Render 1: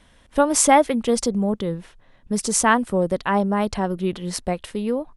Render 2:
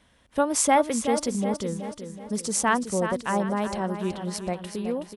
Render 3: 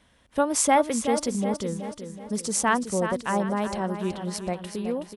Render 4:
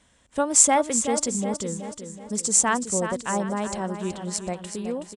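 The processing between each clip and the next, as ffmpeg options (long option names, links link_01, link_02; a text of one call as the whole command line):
ffmpeg -i in.wav -filter_complex "[0:a]highpass=51,asplit=2[link_01][link_02];[link_02]aecho=0:1:374|748|1122|1496|1870:0.355|0.163|0.0751|0.0345|0.0159[link_03];[link_01][link_03]amix=inputs=2:normalize=0,volume=-5.5dB" out.wav
ffmpeg -i in.wav -af anull out.wav
ffmpeg -i in.wav -af "equalizer=frequency=7400:width=2.5:gain=14,aresample=22050,aresample=44100,volume=-1dB" out.wav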